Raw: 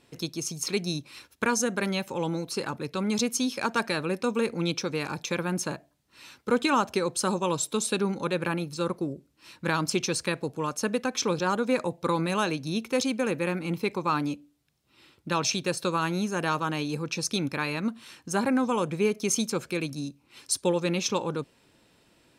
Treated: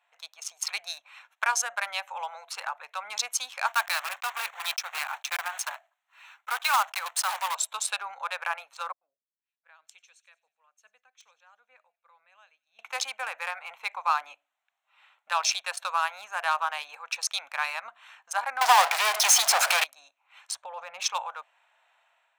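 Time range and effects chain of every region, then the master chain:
0:03.67–0:07.55: one scale factor per block 3 bits + high-pass filter 720 Hz
0:08.92–0:12.79: guitar amp tone stack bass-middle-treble 10-0-1 + delay with a high-pass on its return 95 ms, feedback 69%, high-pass 3,500 Hz, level −16 dB + multiband upward and downward expander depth 100%
0:18.61–0:19.84: parametric band 750 Hz +9.5 dB 0.69 octaves + power curve on the samples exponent 0.35 + multiband upward and downward compressor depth 40%
0:20.51–0:21.00: spectral tilt −4 dB per octave + compressor whose output falls as the input rises −23 dBFS
whole clip: adaptive Wiener filter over 9 samples; elliptic high-pass filter 700 Hz, stop band 50 dB; automatic gain control gain up to 6.5 dB; level −3 dB

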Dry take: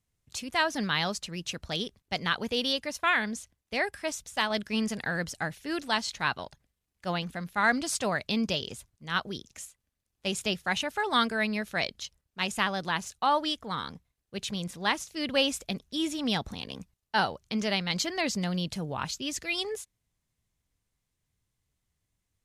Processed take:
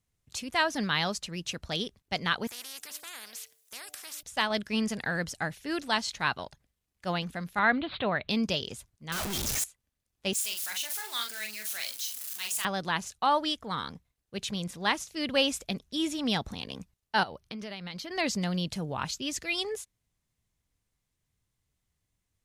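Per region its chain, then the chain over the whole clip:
0:02.47–0:04.23: first difference + hum removal 149.7 Hz, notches 5 + every bin compressed towards the loudest bin 4 to 1
0:07.59–0:08.29: Butterworth low-pass 4,000 Hz 96 dB per octave + upward compression, threshold −28 dBFS
0:09.12–0:09.64: sign of each sample alone + high-shelf EQ 3,800 Hz +7 dB
0:10.33–0:12.65: converter with a step at zero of −30.5 dBFS + first difference + double-tracking delay 42 ms −5 dB
0:17.23–0:18.11: parametric band 7,200 Hz −13 dB 0.34 octaves + downward compressor 16 to 1, threshold −35 dBFS
whole clip: no processing

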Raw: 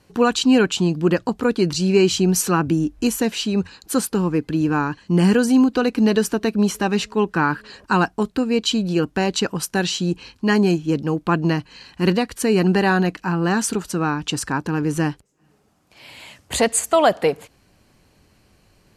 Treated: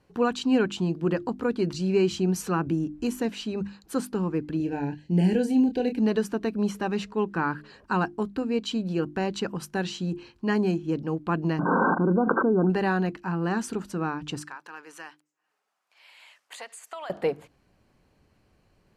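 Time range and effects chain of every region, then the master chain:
0:04.57–0:05.98: dynamic equaliser 5,500 Hz, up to −4 dB, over −46 dBFS, Q 2.7 + Butterworth band-reject 1,200 Hz, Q 1.3 + double-tracking delay 28 ms −7 dB
0:11.59–0:12.70: linear-phase brick-wall band-pass 160–1,600 Hz + envelope flattener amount 100%
0:14.42–0:17.10: high-pass filter 1,100 Hz + downward compressor, threshold −26 dBFS
whole clip: high-shelf EQ 3,100 Hz −10 dB; mains-hum notches 50/100/150/200/250/300/350 Hz; level −6.5 dB

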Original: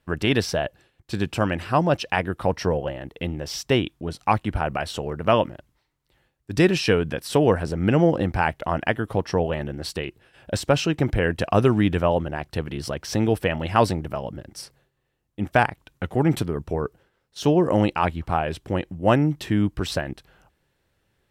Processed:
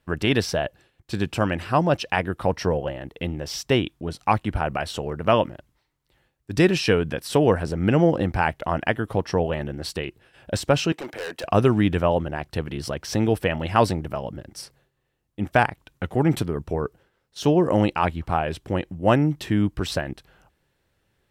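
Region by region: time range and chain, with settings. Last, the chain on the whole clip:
0:10.92–0:11.44: high-pass filter 450 Hz + hard clipping −28.5 dBFS
whole clip: no processing

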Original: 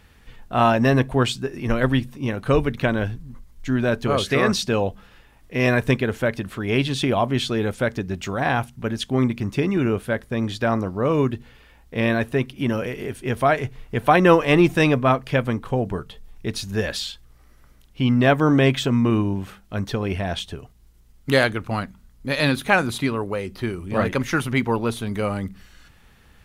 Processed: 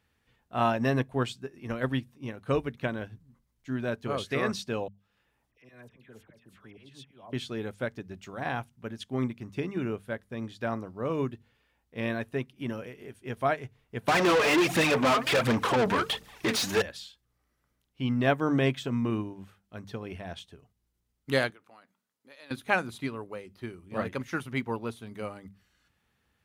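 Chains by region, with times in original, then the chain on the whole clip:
0:04.88–0:07.33: volume swells 354 ms + downward compressor 1.5 to 1, threshold −37 dBFS + all-pass dispersion lows, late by 76 ms, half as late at 1,500 Hz
0:14.08–0:16.82: downward compressor 2 to 1, threshold −33 dBFS + phase shifter 1.4 Hz, delay 5 ms, feedback 62% + mid-hump overdrive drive 37 dB, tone 4,500 Hz, clips at −8 dBFS
0:21.50–0:22.51: high-pass filter 380 Hz + downward compressor 2 to 1, threshold −39 dBFS
whole clip: high-pass filter 69 Hz; mains-hum notches 50/100/150/200 Hz; expander for the loud parts 1.5 to 1, over −35 dBFS; level −7 dB

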